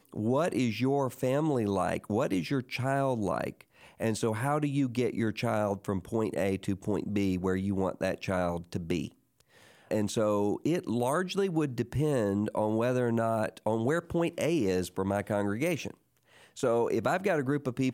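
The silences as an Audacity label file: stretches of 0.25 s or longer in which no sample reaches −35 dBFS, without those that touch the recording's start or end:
3.610000	4.000000	silence
9.080000	9.910000	silence
15.910000	16.580000	silence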